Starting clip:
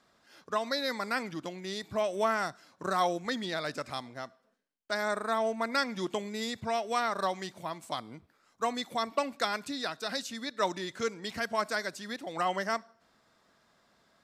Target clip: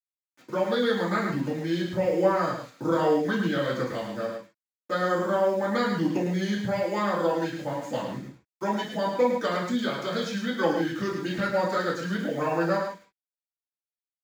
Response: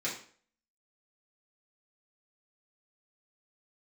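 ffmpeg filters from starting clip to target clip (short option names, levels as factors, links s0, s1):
-filter_complex "[0:a]agate=range=0.282:threshold=0.002:ratio=16:detection=peak,firequalizer=gain_entry='entry(120,0);entry(1200,-4);entry(5200,-10)':delay=0.05:min_phase=1,asplit=2[s0][s1];[s1]acompressor=threshold=0.01:ratio=6,volume=1.33[s2];[s0][s2]amix=inputs=2:normalize=0,asetrate=38170,aresample=44100,atempo=1.15535,acrusher=bits=8:mix=0:aa=0.000001,aecho=1:1:107:0.501[s3];[1:a]atrim=start_sample=2205,atrim=end_sample=3528[s4];[s3][s4]afir=irnorm=-1:irlink=0"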